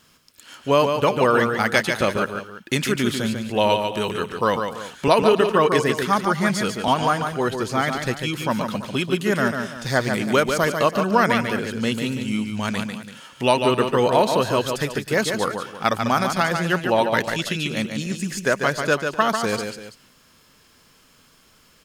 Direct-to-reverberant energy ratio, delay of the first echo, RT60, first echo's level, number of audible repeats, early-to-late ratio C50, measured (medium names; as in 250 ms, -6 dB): no reverb, 145 ms, no reverb, -6.0 dB, 3, no reverb